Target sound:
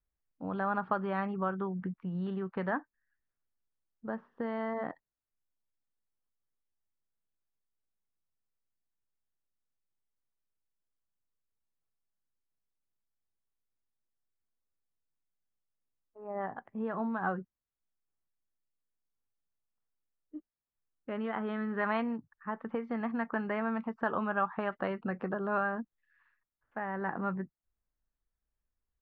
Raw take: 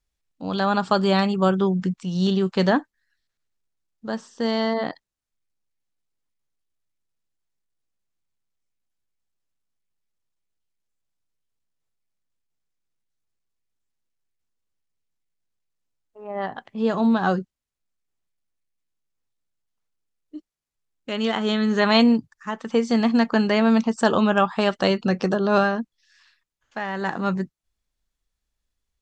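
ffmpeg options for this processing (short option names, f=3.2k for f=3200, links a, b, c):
-filter_complex "[0:a]lowpass=f=1.8k:w=0.5412,lowpass=f=1.8k:w=1.3066,acrossover=split=920[a][b];[a]acompressor=threshold=-26dB:ratio=6[c];[c][b]amix=inputs=2:normalize=0,volume=-7dB"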